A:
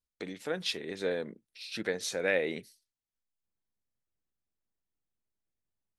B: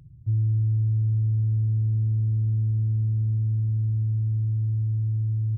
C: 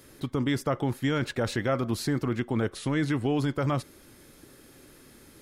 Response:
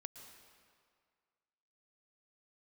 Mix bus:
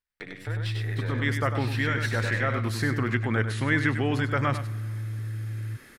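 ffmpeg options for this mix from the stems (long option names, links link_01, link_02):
-filter_complex "[0:a]aeval=exprs='if(lt(val(0),0),0.447*val(0),val(0))':channel_layout=same,bandreject=frequency=6500:width=6.3,acompressor=threshold=-38dB:ratio=6,volume=-0.5dB,asplit=3[link_01][link_02][link_03];[link_02]volume=-4dB[link_04];[1:a]highpass=180,adelay=200,volume=1.5dB[link_05];[2:a]adelay=750,volume=-3.5dB,asplit=3[link_06][link_07][link_08];[link_07]volume=-6.5dB[link_09];[link_08]volume=-8.5dB[link_10];[link_03]apad=whole_len=271842[link_11];[link_06][link_11]sidechaincompress=threshold=-41dB:ratio=8:attack=31:release=1000[link_12];[3:a]atrim=start_sample=2205[link_13];[link_09][link_13]afir=irnorm=-1:irlink=0[link_14];[link_04][link_10]amix=inputs=2:normalize=0,aecho=0:1:98:1[link_15];[link_01][link_05][link_12][link_14][link_15]amix=inputs=5:normalize=0,equalizer=frequency=1800:width_type=o:width=1.1:gain=13"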